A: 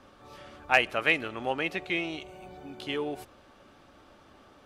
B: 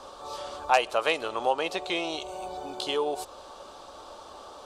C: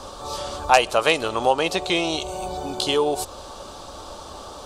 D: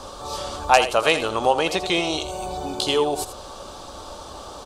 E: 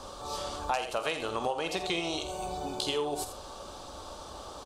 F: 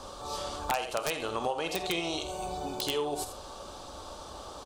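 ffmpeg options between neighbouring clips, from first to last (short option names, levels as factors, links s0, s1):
-af "equalizer=f=125:t=o:w=1:g=-9,equalizer=f=250:t=o:w=1:g=-6,equalizer=f=500:t=o:w=1:g=7,equalizer=f=1000:t=o:w=1:g=11,equalizer=f=2000:t=o:w=1:g=-10,equalizer=f=4000:t=o:w=1:g=9,equalizer=f=8000:t=o:w=1:g=11,acompressor=threshold=0.0112:ratio=1.5,volume=1.78"
-af "bass=f=250:g=11,treble=f=4000:g=6,volume=2"
-af "aecho=1:1:82:0.266"
-filter_complex "[0:a]acompressor=threshold=0.0891:ratio=6,asplit=2[s0][s1];[s1]adelay=48,volume=0.282[s2];[s0][s2]amix=inputs=2:normalize=0,volume=0.473"
-af "aeval=exprs='(mod(7.94*val(0)+1,2)-1)/7.94':c=same"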